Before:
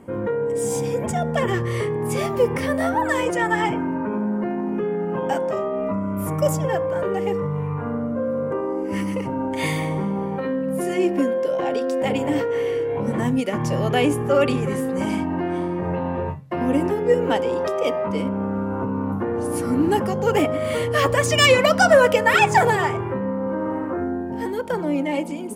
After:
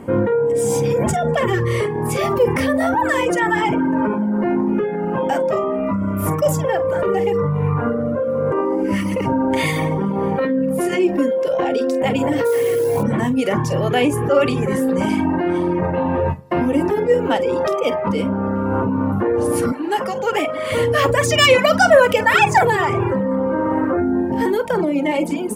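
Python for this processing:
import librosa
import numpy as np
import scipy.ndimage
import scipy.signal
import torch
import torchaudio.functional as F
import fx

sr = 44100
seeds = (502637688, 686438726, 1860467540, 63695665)

p1 = fx.echo_feedback(x, sr, ms=199, feedback_pct=49, wet_db=-23)
p2 = fx.over_compress(p1, sr, threshold_db=-26.0, ratio=-0.5)
p3 = p1 + F.gain(torch.from_numpy(p2), -2.5).numpy()
p4 = fx.peak_eq(p3, sr, hz=7900.0, db=-2.5, octaves=1.4)
p5 = fx.doubler(p4, sr, ms=49.0, db=-9.0)
p6 = fx.sample_hold(p5, sr, seeds[0], rate_hz=11000.0, jitter_pct=20, at=(12.44, 13.02), fade=0.02)
p7 = fx.weighting(p6, sr, curve='A', at=(19.72, 20.72))
p8 = fx.dereverb_blind(p7, sr, rt60_s=0.66)
y = F.gain(torch.from_numpy(p8), 2.5).numpy()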